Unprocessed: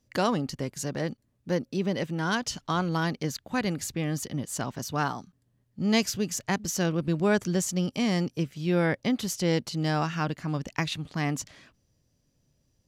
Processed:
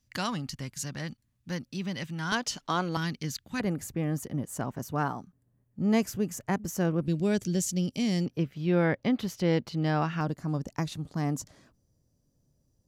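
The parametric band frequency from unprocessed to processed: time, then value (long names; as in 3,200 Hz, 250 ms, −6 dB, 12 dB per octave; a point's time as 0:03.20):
parametric band −14 dB 1.7 octaves
460 Hz
from 0:02.32 74 Hz
from 0:02.97 620 Hz
from 0:03.60 4,100 Hz
from 0:07.06 1,100 Hz
from 0:08.26 8,400 Hz
from 0:10.21 2,600 Hz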